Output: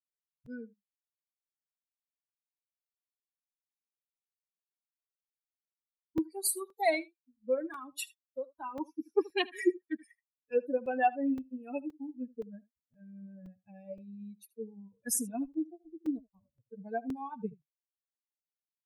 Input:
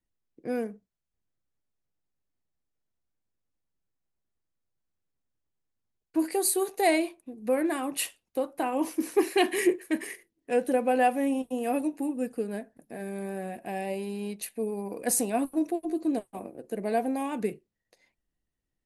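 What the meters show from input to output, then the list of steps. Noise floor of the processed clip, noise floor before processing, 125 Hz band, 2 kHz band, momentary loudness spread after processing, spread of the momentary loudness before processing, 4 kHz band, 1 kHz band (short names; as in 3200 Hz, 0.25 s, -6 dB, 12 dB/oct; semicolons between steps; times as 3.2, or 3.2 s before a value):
under -85 dBFS, -84 dBFS, n/a, -6.0 dB, 19 LU, 12 LU, -5.5 dB, -6.0 dB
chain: per-bin expansion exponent 3; echo 77 ms -21.5 dB; crackling interface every 0.52 s, samples 128, zero, from 0.46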